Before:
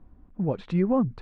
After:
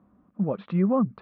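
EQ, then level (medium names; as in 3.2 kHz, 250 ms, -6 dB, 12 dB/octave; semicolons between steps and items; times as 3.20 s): cabinet simulation 140–3800 Hz, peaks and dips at 200 Hz +9 dB, 590 Hz +6 dB, 1.2 kHz +10 dB; -3.0 dB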